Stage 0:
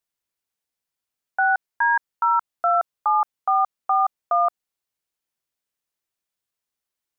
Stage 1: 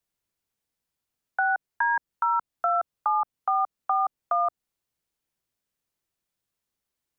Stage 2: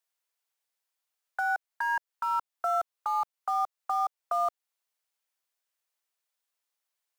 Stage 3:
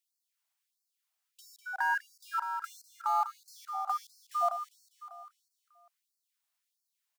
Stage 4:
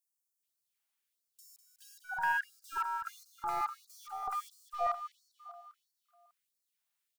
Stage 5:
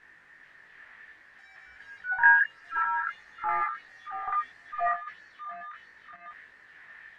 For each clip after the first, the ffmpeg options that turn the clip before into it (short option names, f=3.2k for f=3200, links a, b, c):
-filter_complex "[0:a]lowshelf=f=380:g=8.5,acrossover=split=690|920[a][b][c];[a]alimiter=level_in=8dB:limit=-24dB:level=0:latency=1:release=16,volume=-8dB[d];[d][b][c]amix=inputs=3:normalize=0,acrossover=split=500[e][f];[f]acompressor=threshold=-26dB:ratio=2[g];[e][g]amix=inputs=2:normalize=0"
-filter_complex "[0:a]acrossover=split=500[a][b];[a]acrusher=bits=7:mix=0:aa=0.000001[c];[b]alimiter=limit=-21.5dB:level=0:latency=1:release=349[d];[c][d]amix=inputs=2:normalize=0"
-af "aecho=1:1:199|398|597|796|995|1194|1393:0.398|0.235|0.139|0.0818|0.0482|0.0285|0.0168,afftfilt=real='re*gte(b*sr/1024,560*pow(4200/560,0.5+0.5*sin(2*PI*1.5*pts/sr)))':imag='im*gte(b*sr/1024,560*pow(4200/560,0.5+0.5*sin(2*PI*1.5*pts/sr)))':win_size=1024:overlap=0.75"
-filter_complex "[0:a]aeval=exprs='0.119*(cos(1*acos(clip(val(0)/0.119,-1,1)))-cos(1*PI/2))+0.0133*(cos(2*acos(clip(val(0)/0.119,-1,1)))-cos(2*PI/2))+0.00133*(cos(4*acos(clip(val(0)/0.119,-1,1)))-cos(4*PI/2))+0.00133*(cos(6*acos(clip(val(0)/0.119,-1,1)))-cos(6*PI/2))+0.000841*(cos(8*acos(clip(val(0)/0.119,-1,1)))-cos(8*PI/2))':c=same,acrossover=split=970|5500[a][b][c];[a]adelay=380[d];[b]adelay=430[e];[d][e][c]amix=inputs=3:normalize=0"
-af "aeval=exprs='val(0)+0.5*0.00531*sgn(val(0))':c=same,lowpass=f=1.8k:t=q:w=12,flanger=delay=18.5:depth=2:speed=0.61,volume=3.5dB"